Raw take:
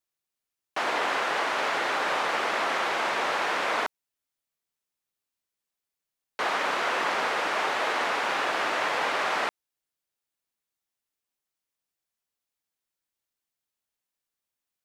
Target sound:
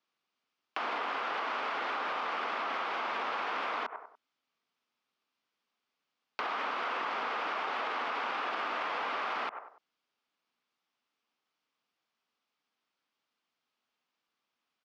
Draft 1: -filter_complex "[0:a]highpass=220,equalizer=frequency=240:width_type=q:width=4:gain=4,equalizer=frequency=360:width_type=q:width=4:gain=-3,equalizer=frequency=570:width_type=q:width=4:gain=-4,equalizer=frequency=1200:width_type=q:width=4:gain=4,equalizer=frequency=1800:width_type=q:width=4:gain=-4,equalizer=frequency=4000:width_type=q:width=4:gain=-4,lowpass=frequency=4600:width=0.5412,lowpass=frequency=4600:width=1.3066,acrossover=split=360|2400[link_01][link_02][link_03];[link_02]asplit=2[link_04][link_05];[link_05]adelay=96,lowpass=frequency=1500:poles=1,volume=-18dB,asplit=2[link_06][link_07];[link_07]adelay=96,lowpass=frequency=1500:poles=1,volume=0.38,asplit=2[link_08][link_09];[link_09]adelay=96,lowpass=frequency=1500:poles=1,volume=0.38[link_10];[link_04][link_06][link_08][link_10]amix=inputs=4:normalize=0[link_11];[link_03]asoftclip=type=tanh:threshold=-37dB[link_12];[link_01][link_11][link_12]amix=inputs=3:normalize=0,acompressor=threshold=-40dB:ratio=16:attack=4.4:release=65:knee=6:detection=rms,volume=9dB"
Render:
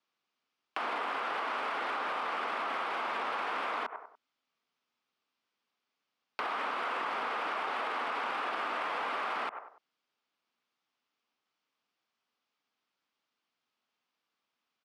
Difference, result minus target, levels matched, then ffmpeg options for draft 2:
soft clipping: distortion +14 dB
-filter_complex "[0:a]highpass=220,equalizer=frequency=240:width_type=q:width=4:gain=4,equalizer=frequency=360:width_type=q:width=4:gain=-3,equalizer=frequency=570:width_type=q:width=4:gain=-4,equalizer=frequency=1200:width_type=q:width=4:gain=4,equalizer=frequency=1800:width_type=q:width=4:gain=-4,equalizer=frequency=4000:width_type=q:width=4:gain=-4,lowpass=frequency=4600:width=0.5412,lowpass=frequency=4600:width=1.3066,acrossover=split=360|2400[link_01][link_02][link_03];[link_02]asplit=2[link_04][link_05];[link_05]adelay=96,lowpass=frequency=1500:poles=1,volume=-18dB,asplit=2[link_06][link_07];[link_07]adelay=96,lowpass=frequency=1500:poles=1,volume=0.38,asplit=2[link_08][link_09];[link_09]adelay=96,lowpass=frequency=1500:poles=1,volume=0.38[link_10];[link_04][link_06][link_08][link_10]amix=inputs=4:normalize=0[link_11];[link_03]asoftclip=type=tanh:threshold=-27.5dB[link_12];[link_01][link_11][link_12]amix=inputs=3:normalize=0,acompressor=threshold=-40dB:ratio=16:attack=4.4:release=65:knee=6:detection=rms,volume=9dB"

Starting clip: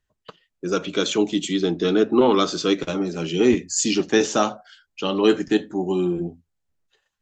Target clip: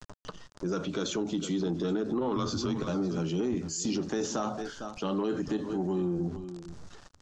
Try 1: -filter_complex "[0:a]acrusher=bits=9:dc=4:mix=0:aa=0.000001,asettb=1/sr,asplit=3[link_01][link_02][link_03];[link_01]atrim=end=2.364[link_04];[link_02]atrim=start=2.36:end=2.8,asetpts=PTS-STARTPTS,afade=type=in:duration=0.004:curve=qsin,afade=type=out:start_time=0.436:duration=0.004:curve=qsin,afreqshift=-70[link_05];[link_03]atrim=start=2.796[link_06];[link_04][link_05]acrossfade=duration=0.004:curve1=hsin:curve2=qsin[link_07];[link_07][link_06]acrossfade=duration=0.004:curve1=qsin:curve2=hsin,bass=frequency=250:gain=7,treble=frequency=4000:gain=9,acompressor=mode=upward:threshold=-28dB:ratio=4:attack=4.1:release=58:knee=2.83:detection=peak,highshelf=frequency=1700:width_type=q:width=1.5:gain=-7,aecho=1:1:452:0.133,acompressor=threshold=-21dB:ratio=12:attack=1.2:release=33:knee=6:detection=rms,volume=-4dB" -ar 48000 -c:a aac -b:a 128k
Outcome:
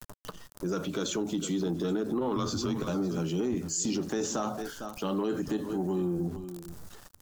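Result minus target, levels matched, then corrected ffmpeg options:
8,000 Hz band +3.0 dB
-filter_complex "[0:a]acrusher=bits=9:dc=4:mix=0:aa=0.000001,asettb=1/sr,asplit=3[link_01][link_02][link_03];[link_01]atrim=end=2.364[link_04];[link_02]atrim=start=2.36:end=2.8,asetpts=PTS-STARTPTS,afade=type=in:duration=0.004:curve=qsin,afade=type=out:start_time=0.436:duration=0.004:curve=qsin,afreqshift=-70[link_05];[link_03]atrim=start=2.796[link_06];[link_04][link_05]acrossfade=duration=0.004:curve1=hsin:curve2=qsin[link_07];[link_07][link_06]acrossfade=duration=0.004:curve1=qsin:curve2=hsin,bass=frequency=250:gain=7,treble=frequency=4000:gain=9,acompressor=mode=upward:threshold=-28dB:ratio=4:attack=4.1:release=58:knee=2.83:detection=peak,highshelf=frequency=1700:width_type=q:width=1.5:gain=-7,aecho=1:1:452:0.133,acompressor=threshold=-21dB:ratio=12:attack=1.2:release=33:knee=6:detection=rms,lowpass=frequency=6600:width=0.5412,lowpass=frequency=6600:width=1.3066,volume=-4dB" -ar 48000 -c:a aac -b:a 128k

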